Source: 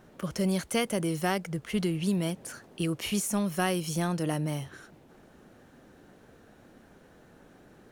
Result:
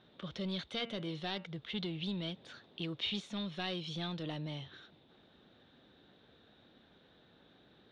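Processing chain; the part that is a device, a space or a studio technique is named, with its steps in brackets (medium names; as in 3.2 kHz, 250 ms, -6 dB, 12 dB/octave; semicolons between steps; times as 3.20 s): high-pass 52 Hz; overdriven synthesiser ladder filter (saturation -22 dBFS, distortion -15 dB; four-pole ladder low-pass 3.8 kHz, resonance 85%); 0.68–1.46 s: de-hum 115.3 Hz, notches 26; trim +3.5 dB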